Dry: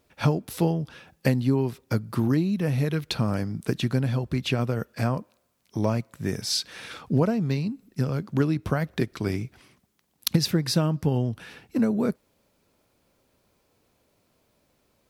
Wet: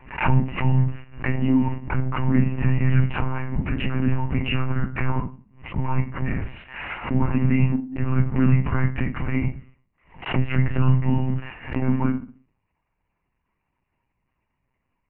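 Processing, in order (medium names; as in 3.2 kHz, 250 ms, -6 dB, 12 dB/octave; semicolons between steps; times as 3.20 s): Chebyshev band-stop 270–840 Hz, order 4; waveshaping leveller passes 3; peak limiter -16.5 dBFS, peak gain reduction 11 dB; rippled Chebyshev low-pass 2.9 kHz, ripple 6 dB; FDN reverb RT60 0.34 s, low-frequency decay 1.4×, high-frequency decay 0.85×, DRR -4 dB; monotone LPC vocoder at 8 kHz 130 Hz; swell ahead of each attack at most 130 dB/s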